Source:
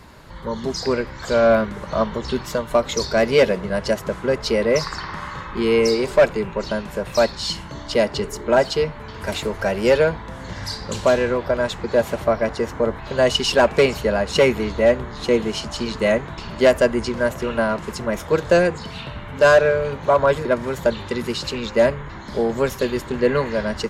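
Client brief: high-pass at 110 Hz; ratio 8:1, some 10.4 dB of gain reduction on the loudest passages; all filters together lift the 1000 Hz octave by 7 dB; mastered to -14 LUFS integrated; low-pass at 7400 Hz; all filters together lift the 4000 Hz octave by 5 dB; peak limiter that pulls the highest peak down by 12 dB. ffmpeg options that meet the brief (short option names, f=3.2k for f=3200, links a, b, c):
-af "highpass=110,lowpass=7.4k,equalizer=f=1k:t=o:g=8.5,equalizer=f=4k:t=o:g=6.5,acompressor=threshold=-17dB:ratio=8,volume=12.5dB,alimiter=limit=-3.5dB:level=0:latency=1"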